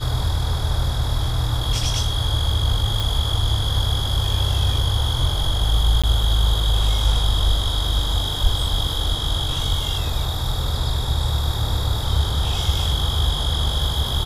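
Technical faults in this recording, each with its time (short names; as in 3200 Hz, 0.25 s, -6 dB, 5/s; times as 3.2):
3 pop
6.02–6.04 gap 16 ms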